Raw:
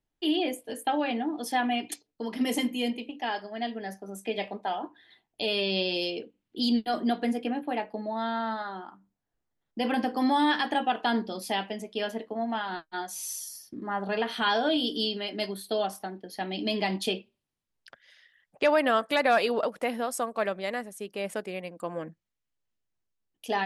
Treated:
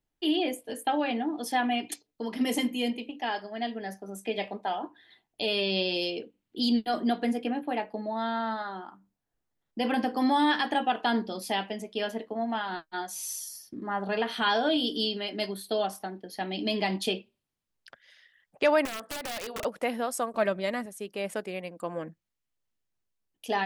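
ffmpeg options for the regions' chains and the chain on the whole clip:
-filter_complex "[0:a]asettb=1/sr,asplit=3[s0][s1][s2];[s0]atrim=end=18.854[s3];[s1]atrim=start=18.85:end=19.65,asetpts=PTS-STARTPTS,afade=t=in:d=0.004:c=qsin,afade=t=out:st=0.796:d=0.004:c=qsin,acompressor=threshold=0.0282:ratio=10:attack=3.2:release=140:knee=1:detection=peak,bandreject=f=60:t=h:w=6,bandreject=f=120:t=h:w=6,bandreject=f=180:t=h:w=6,bandreject=f=240:t=h:w=6,bandreject=f=300:t=h:w=6,bandreject=f=360:t=h:w=6,bandreject=f=420:t=h:w=6,bandreject=f=480:t=h:w=6,aeval=exprs='(mod(28.2*val(0)+1,2)-1)/28.2':c=same[s4];[s2]atrim=start=19.646[s5];[s3][s4]acrossfade=d=0.004:c1=hsin:c2=qsin[s6];[s6][s5]acrossfade=d=0.004:c1=qsin:c2=hsin,asettb=1/sr,asplit=3[s7][s8][s9];[s7]atrim=end=20.344[s10];[s8]atrim=start=20.34:end=20.86,asetpts=PTS-STARTPTS,afade=t=in:d=0.004:c=qsin,afade=t=out:st=0.516:d=0.004:c=qsin,equalizer=f=150:w=2:g=15,aecho=1:1:3.2:0.43,atrim=end_sample=22932,acompressor=mode=upward:threshold=0.0126:ratio=2.5:attack=3.2:release=140:knee=2.83:detection=peak[s11];[s9]atrim=start=20.856[s12];[s10][s11]acrossfade=d=0.004:c1=hsin:c2=qsin[s13];[s13][s12]acrossfade=d=0.004:c1=qsin:c2=hsin"

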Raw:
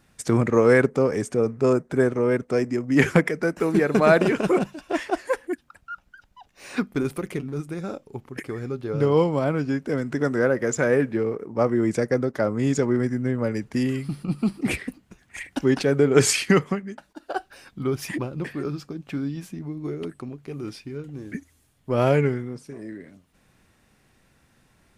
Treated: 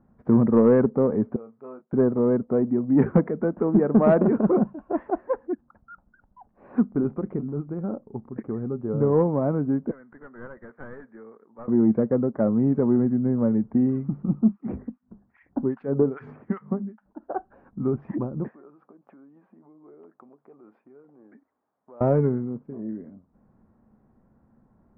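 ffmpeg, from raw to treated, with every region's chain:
-filter_complex "[0:a]asettb=1/sr,asplit=3[s0][s1][s2];[s0]atrim=end=1.364[s3];[s1]atrim=start=1.36:end=1.93,asetpts=PTS-STARTPTS,afade=t=in:d=0.004:c=qsin,afade=t=out:st=0.566:d=0.004:c=qsin,bandpass=f=4400:t=q:w=1.1,asplit=2[s4][s5];[s5]adelay=28,volume=0.355[s6];[s4][s6]amix=inputs=2:normalize=0,atrim=end_sample=25137[s7];[s2]atrim=start=1.926[s8];[s3][s7]acrossfade=d=0.004:c1=hsin:c2=qsin[s9];[s9][s8]acrossfade=d=0.004:c1=qsin:c2=hsin,asettb=1/sr,asplit=3[s10][s11][s12];[s10]atrim=end=9.914[s13];[s11]atrim=start=9.91:end=11.68,asetpts=PTS-STARTPTS,afade=t=in:d=0.004:c=qsin,afade=t=out:st=1.766:d=0.004:c=qsin,bandpass=f=1800:t=q:w=2.6,aeval=exprs='clip(val(0),-1,0.0141)':c=same[s14];[s12]atrim=start=11.676[s15];[s13][s14]acrossfade=d=0.004:c1=hsin:c2=qsin[s16];[s16][s15]acrossfade=d=0.004:c1=qsin:c2=hsin,asettb=1/sr,asplit=3[s17][s18][s19];[s17]atrim=end=14.394[s20];[s18]atrim=start=14.39:end=17.06,asetpts=PTS-STARTPTS,afade=t=in:d=0.004:c=qsin,afade=t=out:st=2.666:d=0.004:c=qsin,bandreject=f=50:t=h:w=6,bandreject=f=100:t=h:w=6,bandreject=f=150:t=h:w=6,bandreject=f=200:t=h:w=6,bandreject=f=250:t=h:w=6,acrossover=split=1400[s21][s22];[s21]aeval=exprs='val(0)*(1-1/2+1/2*cos(2*PI*2.5*n/s))':c=same[s23];[s22]aeval=exprs='val(0)*(1-1/2-1/2*cos(2*PI*2.5*n/s))':c=same[s24];[s23][s24]amix=inputs=2:normalize=0[s25];[s19]atrim=start=17.056[s26];[s20][s25]acrossfade=d=0.004:c1=hsin:c2=qsin[s27];[s27][s26]acrossfade=d=0.004:c1=qsin:c2=hsin,asettb=1/sr,asplit=3[s28][s29][s30];[s28]atrim=end=18.484[s31];[s29]atrim=start=18.48:end=22.01,asetpts=PTS-STARTPTS,afade=t=in:d=0.004:c=qsin,afade=t=out:st=3.526:d=0.004:c=qsin,acompressor=threshold=0.0158:ratio=5:attack=3.2:release=140:knee=1:detection=peak,highpass=620,lowpass=6200[s32];[s30]atrim=start=22.006[s33];[s31][s32]acrossfade=d=0.004:c1=hsin:c2=qsin[s34];[s34][s33]acrossfade=d=0.004:c1=qsin:c2=hsin,lowpass=f=1100:w=0.5412,lowpass=f=1100:w=1.3066,equalizer=f=220:w=4.1:g=10,acontrast=30,volume=0.501"

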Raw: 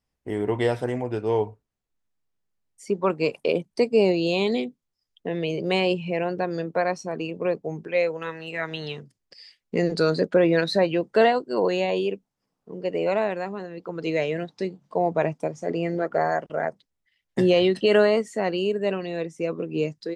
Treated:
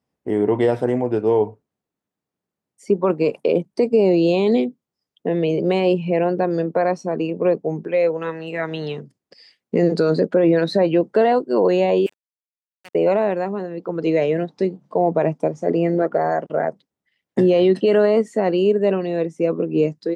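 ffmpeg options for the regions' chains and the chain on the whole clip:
-filter_complex "[0:a]asettb=1/sr,asplit=3[s0][s1][s2];[s0]atrim=end=12.064[s3];[s1]atrim=start=12.06:end=12.95,asetpts=PTS-STARTPTS,afade=t=in:d=0.004:c=qsin,afade=t=out:st=0.886:d=0.004:c=qsin,highpass=f=1100:w=0.5412,highpass=f=1100:w=1.3066,highshelf=f=4800:g=-7.5,acrusher=bits=5:mix=0:aa=0.5[s4];[s2]atrim=start=12.946[s5];[s3][s4]acrossfade=d=0.004:c1=hsin:c2=qsin[s6];[s6][s5]acrossfade=d=0.004:c1=qsin:c2=hsin,alimiter=limit=0.178:level=0:latency=1:release=22,highpass=160,tiltshelf=f=1200:g=6,volume=1.5"

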